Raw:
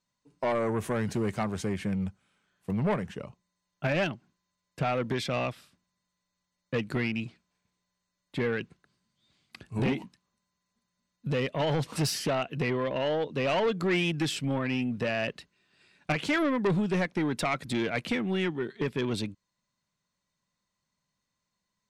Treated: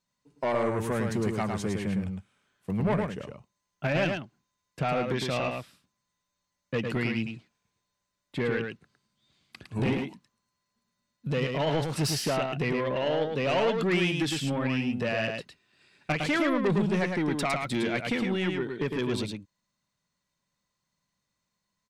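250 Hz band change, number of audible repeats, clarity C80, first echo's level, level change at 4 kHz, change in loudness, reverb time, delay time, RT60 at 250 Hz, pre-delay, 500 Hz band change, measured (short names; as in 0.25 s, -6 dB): +1.5 dB, 1, none, -4.5 dB, +1.5 dB, +1.0 dB, none, 0.108 s, none, none, +1.5 dB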